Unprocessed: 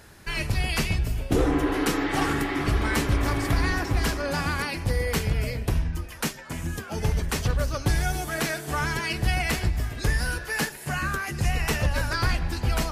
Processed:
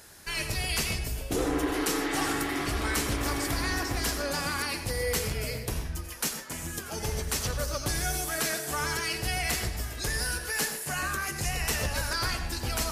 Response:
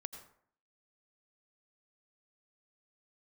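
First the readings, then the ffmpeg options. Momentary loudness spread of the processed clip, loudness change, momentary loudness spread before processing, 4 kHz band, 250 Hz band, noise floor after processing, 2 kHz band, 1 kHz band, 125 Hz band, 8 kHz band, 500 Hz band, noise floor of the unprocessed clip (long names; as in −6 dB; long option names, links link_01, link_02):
5 LU, −3.5 dB, 5 LU, +0.5 dB, −5.5 dB, −39 dBFS, −3.0 dB, −3.5 dB, −8.5 dB, +4.0 dB, −3.5 dB, −41 dBFS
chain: -filter_complex "[0:a]bass=frequency=250:gain=-6,treble=frequency=4000:gain=9,asplit=2[link_01][link_02];[link_02]alimiter=limit=-17.5dB:level=0:latency=1,volume=1dB[link_03];[link_01][link_03]amix=inputs=2:normalize=0[link_04];[1:a]atrim=start_sample=2205,afade=type=out:start_time=0.2:duration=0.01,atrim=end_sample=9261[link_05];[link_04][link_05]afir=irnorm=-1:irlink=0,volume=-6dB"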